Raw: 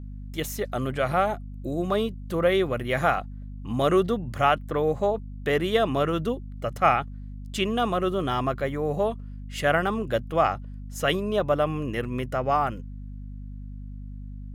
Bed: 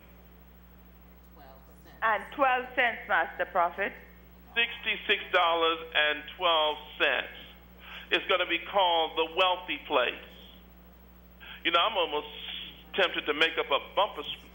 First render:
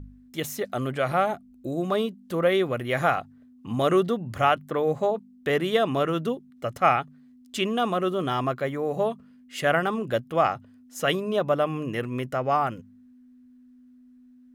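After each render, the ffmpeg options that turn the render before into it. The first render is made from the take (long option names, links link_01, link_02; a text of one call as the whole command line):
ffmpeg -i in.wav -af "bandreject=frequency=50:width_type=h:width=4,bandreject=frequency=100:width_type=h:width=4,bandreject=frequency=150:width_type=h:width=4,bandreject=frequency=200:width_type=h:width=4" out.wav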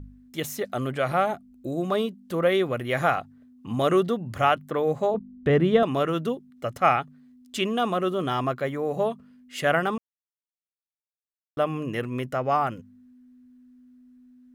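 ffmpeg -i in.wav -filter_complex "[0:a]asettb=1/sr,asplit=3[link_01][link_02][link_03];[link_01]atrim=end=5.144[link_04];[link_02]atrim=start=5.14:end=5.83,asetpts=PTS-STARTPTS,afade=type=in:duration=0.004:curve=qsin,afade=type=out:start_time=0.686:duration=0.004:curve=qsin,aemphasis=mode=reproduction:type=riaa[link_05];[link_03]atrim=start=5.826[link_06];[link_04][link_05]acrossfade=duration=0.004:curve1=hsin:curve2=qsin[link_07];[link_07][link_06]acrossfade=duration=0.004:curve1=qsin:curve2=hsin,asplit=3[link_08][link_09][link_10];[link_08]atrim=end=9.98,asetpts=PTS-STARTPTS,afade=type=out:start_time=9.976:duration=0.004:curve=hsin[link_11];[link_09]atrim=start=9.98:end=11.57,asetpts=PTS-STARTPTS,volume=0[link_12];[link_10]atrim=start=11.57,asetpts=PTS-STARTPTS,afade=type=in:duration=0.004:curve=hsin[link_13];[link_11][link_12][link_13]concat=n=3:v=0:a=1" out.wav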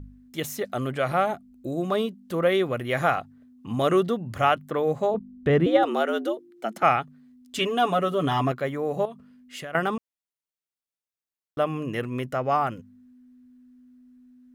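ffmpeg -i in.wav -filter_complex "[0:a]asettb=1/sr,asplit=3[link_01][link_02][link_03];[link_01]atrim=end=5.664[link_04];[link_02]atrim=start=5.66:end=6.83,asetpts=PTS-STARTPTS,afade=type=in:duration=0.004:curve=qsin,afade=type=out:start_time=1.166:duration=0.004:curve=qsin,afreqshift=100[link_05];[link_03]atrim=start=6.826[link_06];[link_04][link_05]acrossfade=duration=0.004:curve1=hsin:curve2=qsin[link_07];[link_07][link_06]acrossfade=duration=0.004:curve1=qsin:curve2=hsin,asettb=1/sr,asplit=3[link_08][link_09][link_10];[link_08]atrim=end=7.584[link_11];[link_09]atrim=start=7.58:end=8.52,asetpts=PTS-STARTPTS,afade=type=in:duration=0.004:curve=qsin,afade=type=out:start_time=0.936:duration=0.004:curve=qsin,aecho=1:1:7:0.82,atrim=end_sample=41454[link_12];[link_10]atrim=start=8.516[link_13];[link_11][link_12]acrossfade=duration=0.004:curve1=hsin:curve2=qsin[link_14];[link_14][link_13]acrossfade=duration=0.004:curve1=qsin:curve2=hsin,asettb=1/sr,asplit=3[link_15][link_16][link_17];[link_15]atrim=end=9.054[link_18];[link_16]atrim=start=9.05:end=9.75,asetpts=PTS-STARTPTS,afade=type=in:duration=0.004:curve=qsin,afade=type=out:start_time=0.696:duration=0.004:curve=qsin,acompressor=threshold=-34dB:ratio=6:attack=3.2:release=140:knee=1:detection=peak[link_19];[link_17]atrim=start=9.746[link_20];[link_18][link_19]acrossfade=duration=0.004:curve1=hsin:curve2=qsin[link_21];[link_21][link_20]acrossfade=duration=0.004:curve1=qsin:curve2=hsin" out.wav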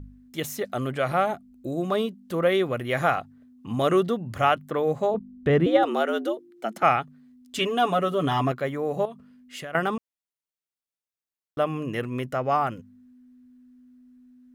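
ffmpeg -i in.wav -af anull out.wav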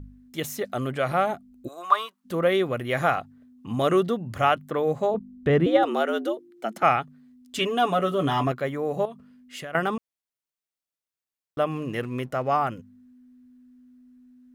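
ffmpeg -i in.wav -filter_complex "[0:a]asplit=3[link_01][link_02][link_03];[link_01]afade=type=out:start_time=1.67:duration=0.02[link_04];[link_02]highpass=frequency=1100:width_type=q:width=5.1,afade=type=in:start_time=1.67:duration=0.02,afade=type=out:start_time=2.24:duration=0.02[link_05];[link_03]afade=type=in:start_time=2.24:duration=0.02[link_06];[link_04][link_05][link_06]amix=inputs=3:normalize=0,asettb=1/sr,asplit=3[link_07][link_08][link_09];[link_07]atrim=end=7.984[link_10];[link_08]atrim=start=7.98:end=8.47,asetpts=PTS-STARTPTS,afade=type=in:duration=0.004:curve=qsin,afade=type=out:start_time=0.486:duration=0.004:curve=qsin,asplit=2[link_11][link_12];[link_12]adelay=21,volume=-11dB[link_13];[link_11][link_13]amix=inputs=2:normalize=0,atrim=end_sample=21609[link_14];[link_09]atrim=start=8.466[link_15];[link_10][link_14]acrossfade=duration=0.004:curve1=hsin:curve2=qsin[link_16];[link_16][link_15]acrossfade=duration=0.004:curve1=qsin:curve2=hsin,asettb=1/sr,asplit=3[link_17][link_18][link_19];[link_17]atrim=end=11.714[link_20];[link_18]atrim=start=11.71:end=12.48,asetpts=PTS-STARTPTS,afade=type=in:duration=0.004:curve=qsin,afade=type=out:start_time=0.766:duration=0.004:curve=qsin,aeval=exprs='sgn(val(0))*max(abs(val(0))-0.00178,0)':channel_layout=same[link_21];[link_19]atrim=start=12.476[link_22];[link_20][link_21]acrossfade=duration=0.004:curve1=hsin:curve2=qsin[link_23];[link_23][link_22]acrossfade=duration=0.004:curve1=qsin:curve2=hsin" out.wav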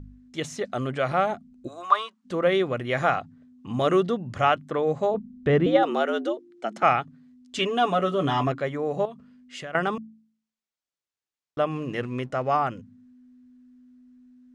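ffmpeg -i in.wav -af "lowpass=frequency=7800:width=0.5412,lowpass=frequency=7800:width=1.3066,bandreject=frequency=55.15:width_type=h:width=4,bandreject=frequency=110.3:width_type=h:width=4,bandreject=frequency=165.45:width_type=h:width=4,bandreject=frequency=220.6:width_type=h:width=4,bandreject=frequency=275.75:width_type=h:width=4" out.wav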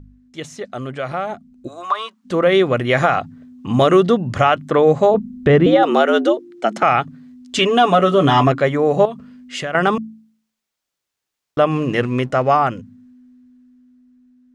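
ffmpeg -i in.wav -af "alimiter=limit=-15dB:level=0:latency=1:release=135,dynaudnorm=framelen=320:gausssize=13:maxgain=13dB" out.wav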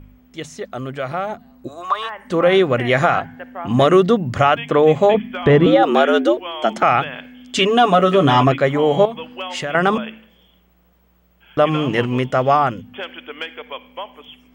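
ffmpeg -i in.wav -i bed.wav -filter_complex "[1:a]volume=-4.5dB[link_01];[0:a][link_01]amix=inputs=2:normalize=0" out.wav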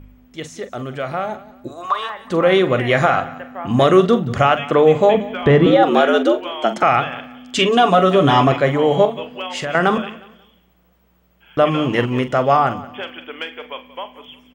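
ffmpeg -i in.wav -filter_complex "[0:a]asplit=2[link_01][link_02];[link_02]adelay=43,volume=-11.5dB[link_03];[link_01][link_03]amix=inputs=2:normalize=0,aecho=1:1:180|360|540:0.126|0.0378|0.0113" out.wav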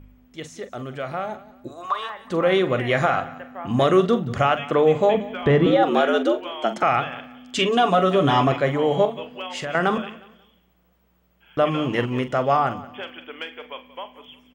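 ffmpeg -i in.wav -af "volume=-5dB" out.wav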